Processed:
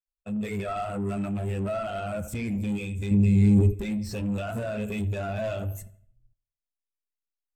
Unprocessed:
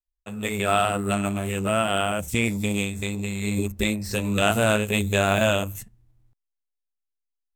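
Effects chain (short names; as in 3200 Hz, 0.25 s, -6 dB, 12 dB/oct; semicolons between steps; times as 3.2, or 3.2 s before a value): in parallel at -1 dB: compressor, threshold -35 dBFS, peak gain reduction 18 dB; on the sum: limiter -13 dBFS, peak gain reduction 9.5 dB; reverb removal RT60 0.53 s; dark delay 81 ms, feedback 48%, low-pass 2600 Hz, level -13 dB; two-slope reverb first 0.59 s, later 1.9 s, from -28 dB, DRR 13.5 dB; soft clip -29.5 dBFS, distortion -8 dB; 3.11–3.74 low shelf 330 Hz +9 dB; spectral expander 1.5:1; gain +8.5 dB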